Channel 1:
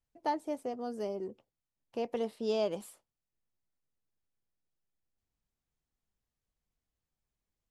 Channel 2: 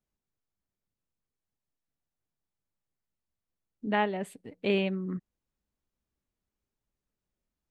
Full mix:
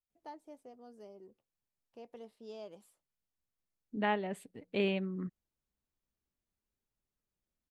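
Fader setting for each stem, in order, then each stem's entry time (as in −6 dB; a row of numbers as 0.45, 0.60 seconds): −16.0, −4.5 decibels; 0.00, 0.10 seconds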